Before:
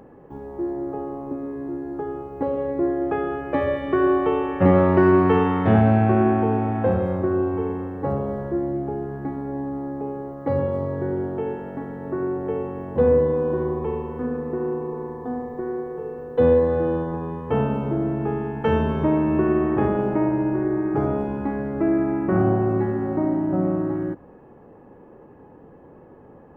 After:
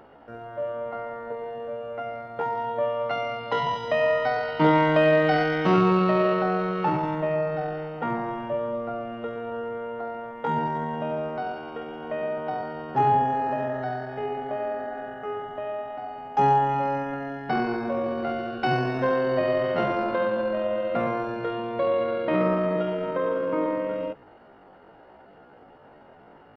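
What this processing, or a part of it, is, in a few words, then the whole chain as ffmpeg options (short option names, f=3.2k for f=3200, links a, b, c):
chipmunk voice: -af "asetrate=74167,aresample=44100,atempo=0.594604,volume=-3.5dB"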